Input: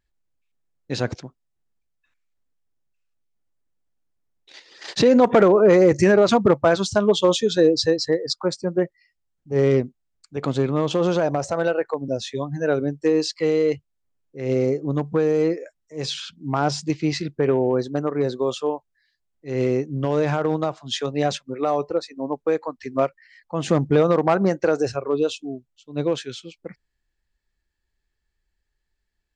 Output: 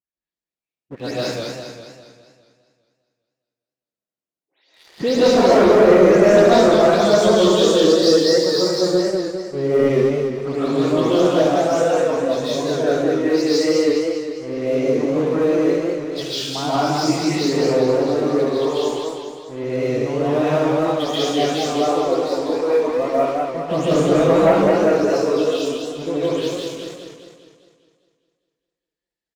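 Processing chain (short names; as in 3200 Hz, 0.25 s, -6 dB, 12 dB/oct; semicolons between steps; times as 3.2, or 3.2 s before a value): spectral delay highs late, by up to 0.197 s; HPF 140 Hz 12 dB/oct; bell 1500 Hz -3.5 dB 0.74 oct; echo 73 ms -7.5 dB; reverb RT60 0.65 s, pre-delay 0.105 s, DRR -8.5 dB; sample leveller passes 2; warbling echo 0.202 s, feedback 52%, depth 134 cents, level -4.5 dB; gain -12 dB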